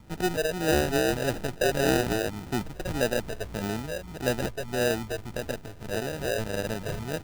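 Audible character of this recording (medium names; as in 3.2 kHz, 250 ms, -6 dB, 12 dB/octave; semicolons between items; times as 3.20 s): phasing stages 4, 1.7 Hz, lowest notch 230–2900 Hz; aliases and images of a low sample rate 1.1 kHz, jitter 0%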